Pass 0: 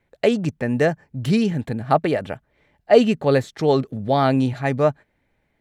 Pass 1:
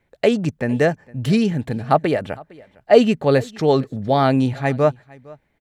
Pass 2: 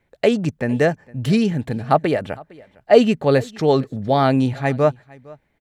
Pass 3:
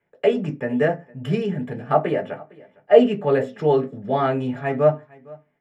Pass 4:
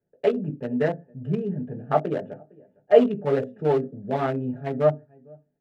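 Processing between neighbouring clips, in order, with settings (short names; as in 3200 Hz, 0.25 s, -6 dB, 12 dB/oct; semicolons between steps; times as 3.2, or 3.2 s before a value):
echo 0.458 s -23.5 dB; gain +1.5 dB
nothing audible
reverb RT60 0.25 s, pre-delay 3 ms, DRR -1.5 dB; gain -18 dB
Wiener smoothing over 41 samples; gain -2.5 dB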